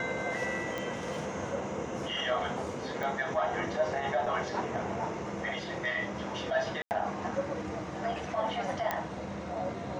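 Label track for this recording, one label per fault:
0.780000	0.780000	click −21 dBFS
3.030000	3.030000	click
4.260000	4.260000	drop-out 3 ms
6.820000	6.910000	drop-out 89 ms
8.910000	8.910000	click −15 dBFS

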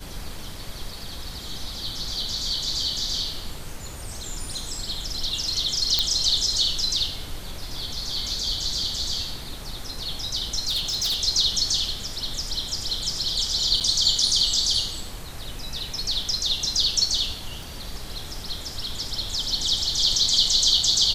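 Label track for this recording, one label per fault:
5.990000	5.990000	click −5 dBFS
10.670000	11.230000	clipping −20.5 dBFS
13.800000	13.810000	drop-out 7.8 ms
17.630000	17.630000	click

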